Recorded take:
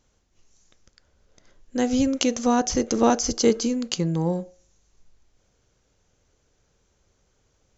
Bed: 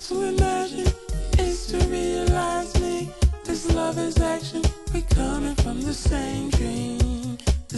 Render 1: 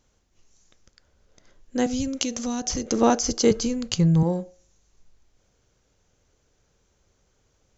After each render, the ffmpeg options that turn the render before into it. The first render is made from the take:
-filter_complex "[0:a]asettb=1/sr,asplit=3[s0][s1][s2];[s0]atrim=end=1.864[s3];[s1]atrim=start=1.86:end=2.86,asetpts=PTS-STARTPTS,afade=t=in:d=0.004:c=qsin,afade=t=out:st=0.996:d=0.004:c=qsin,acrossover=split=200|3000[s4][s5][s6];[s5]acompressor=threshold=0.0316:ratio=6:attack=3.2:release=140:knee=2.83:detection=peak[s7];[s4][s7][s6]amix=inputs=3:normalize=0[s8];[s2]atrim=start=2.856[s9];[s3][s8]acrossfade=d=0.004:c1=hsin:c2=qsin[s10];[s10][s9]acrossfade=d=0.004:c1=qsin:c2=hsin,asettb=1/sr,asplit=3[s11][s12][s13];[s11]atrim=end=3.514[s14];[s12]atrim=start=3.51:end=4.23,asetpts=PTS-STARTPTS,afade=t=in:d=0.004:c=qsin,afade=t=out:st=0.716:d=0.004:c=qsin,lowshelf=f=170:t=q:w=1.5:g=13[s15];[s13]atrim=start=4.226[s16];[s14][s15]acrossfade=d=0.004:c1=hsin:c2=qsin[s17];[s17][s16]acrossfade=d=0.004:c1=qsin:c2=hsin"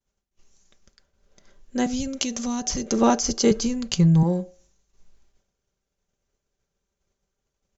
-af "agate=range=0.0224:threshold=0.00158:ratio=3:detection=peak,aecho=1:1:5.1:0.43"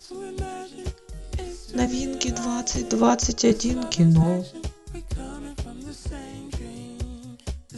-filter_complex "[1:a]volume=0.282[s0];[0:a][s0]amix=inputs=2:normalize=0"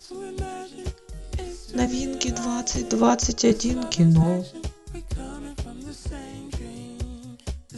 -af anull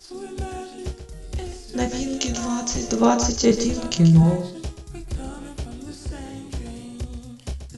-filter_complex "[0:a]asplit=2[s0][s1];[s1]adelay=30,volume=0.398[s2];[s0][s2]amix=inputs=2:normalize=0,aecho=1:1:134:0.316"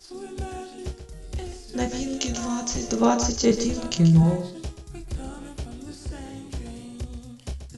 -af "volume=0.75"

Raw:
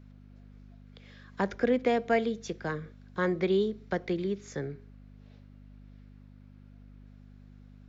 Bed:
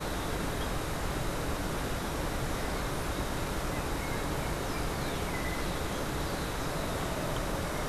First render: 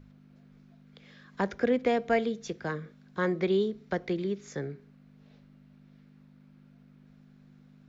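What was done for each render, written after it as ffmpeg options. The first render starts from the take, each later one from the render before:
-af "bandreject=f=50:t=h:w=4,bandreject=f=100:t=h:w=4"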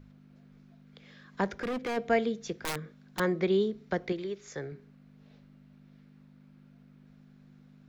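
-filter_complex "[0:a]asplit=3[s0][s1][s2];[s0]afade=t=out:st=1.44:d=0.02[s3];[s1]volume=33.5,asoftclip=hard,volume=0.0299,afade=t=in:st=1.44:d=0.02,afade=t=out:st=1.96:d=0.02[s4];[s2]afade=t=in:st=1.96:d=0.02[s5];[s3][s4][s5]amix=inputs=3:normalize=0,asettb=1/sr,asplit=3[s6][s7][s8];[s6]atrim=end=2.544[s9];[s7]atrim=start=2.54:end=3.2,asetpts=PTS-STARTPTS,afade=t=in:d=0.004:c=qsin,afade=t=out:st=0.656:d=0.004:c=qsin,aeval=exprs='(mod(20*val(0)+1,2)-1)/20':c=same[s10];[s8]atrim=start=3.196[s11];[s9][s10]acrossfade=d=0.004:c1=hsin:c2=qsin[s12];[s12][s11]acrossfade=d=0.004:c1=qsin:c2=hsin,asettb=1/sr,asplit=3[s13][s14][s15];[s13]atrim=end=4.124[s16];[s14]atrim=start=4.12:end=4.72,asetpts=PTS-STARTPTS,afade=t=in:d=0.004:c=qsin,afade=t=out:st=0.596:d=0.004:c=qsin,equalizer=f=210:t=o:w=1.1:g=-10.5[s17];[s15]atrim=start=4.716[s18];[s16][s17]acrossfade=d=0.004:c1=hsin:c2=qsin[s19];[s19][s18]acrossfade=d=0.004:c1=qsin:c2=hsin"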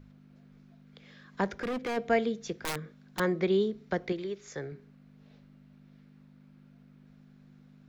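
-af anull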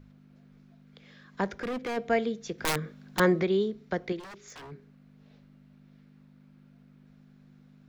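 -filter_complex "[0:a]asettb=1/sr,asplit=3[s0][s1][s2];[s0]atrim=end=2.584[s3];[s1]atrim=start=2.58:end=3.43,asetpts=PTS-STARTPTS,afade=t=in:d=0.004:c=qsin,afade=t=out:st=0.846:d=0.004:c=qsin,acontrast=50[s4];[s2]atrim=start=3.426[s5];[s3][s4]acrossfade=d=0.004:c1=hsin:c2=qsin[s6];[s6][s5]acrossfade=d=0.004:c1=qsin:c2=hsin,asplit=3[s7][s8][s9];[s7]afade=t=out:st=4.19:d=0.02[s10];[s8]aeval=exprs='0.01*(abs(mod(val(0)/0.01+3,4)-2)-1)':c=same,afade=t=in:st=4.19:d=0.02,afade=t=out:st=4.7:d=0.02[s11];[s9]afade=t=in:st=4.7:d=0.02[s12];[s10][s11][s12]amix=inputs=3:normalize=0"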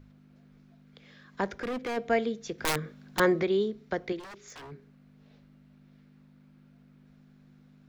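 -af "equalizer=f=180:t=o:w=0.21:g=-7"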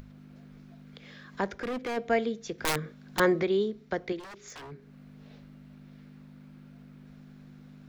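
-af "acompressor=mode=upward:threshold=0.00891:ratio=2.5"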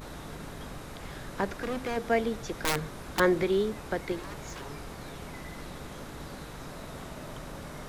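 -filter_complex "[1:a]volume=0.355[s0];[0:a][s0]amix=inputs=2:normalize=0"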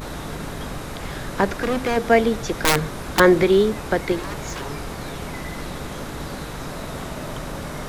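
-af "volume=3.35,alimiter=limit=0.708:level=0:latency=1"

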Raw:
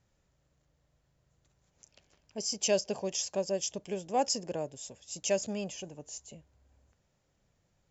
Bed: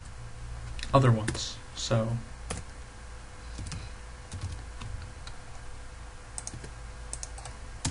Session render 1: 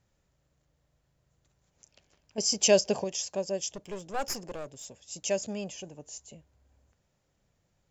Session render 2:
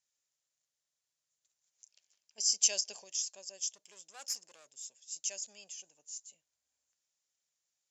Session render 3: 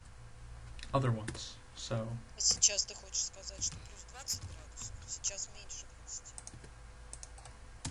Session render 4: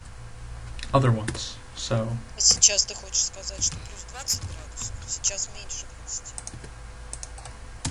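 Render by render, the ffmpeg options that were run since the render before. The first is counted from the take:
-filter_complex "[0:a]asplit=3[s0][s1][s2];[s0]afade=t=out:st=3.72:d=0.02[s3];[s1]aeval=exprs='clip(val(0),-1,0.01)':c=same,afade=t=in:st=3.72:d=0.02,afade=t=out:st=4.84:d=0.02[s4];[s2]afade=t=in:st=4.84:d=0.02[s5];[s3][s4][s5]amix=inputs=3:normalize=0,asplit=3[s6][s7][s8];[s6]atrim=end=2.382[s9];[s7]atrim=start=2.378:end=3.042,asetpts=PTS-STARTPTS,volume=2.11[s10];[s8]atrim=start=3.038[s11];[s9][s10]acrossfade=d=0.004:c1=hsin:c2=hsin[s12];[s12][s11]acrossfade=d=0.004:c1=hsin:c2=hsin"
-af "bandpass=f=6900:t=q:w=1.2:csg=0"
-filter_complex "[1:a]volume=0.316[s0];[0:a][s0]amix=inputs=2:normalize=0"
-af "volume=3.76,alimiter=limit=0.794:level=0:latency=1"

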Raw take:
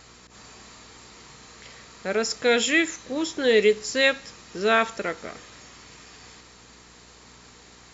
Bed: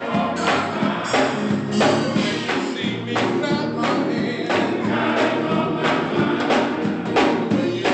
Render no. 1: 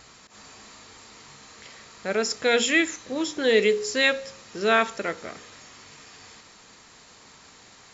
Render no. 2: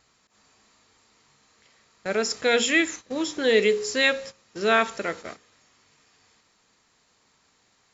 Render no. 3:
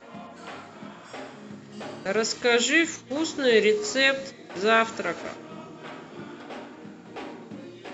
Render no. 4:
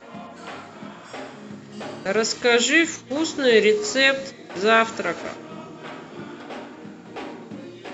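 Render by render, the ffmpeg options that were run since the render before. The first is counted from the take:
-af "bandreject=f=60:t=h:w=4,bandreject=f=120:t=h:w=4,bandreject=f=180:t=h:w=4,bandreject=f=240:t=h:w=4,bandreject=f=300:t=h:w=4,bandreject=f=360:t=h:w=4,bandreject=f=420:t=h:w=4,bandreject=f=480:t=h:w=4,bandreject=f=540:t=h:w=4"
-af "agate=range=0.2:threshold=0.0141:ratio=16:detection=peak"
-filter_complex "[1:a]volume=0.0891[s0];[0:a][s0]amix=inputs=2:normalize=0"
-af "volume=1.5"

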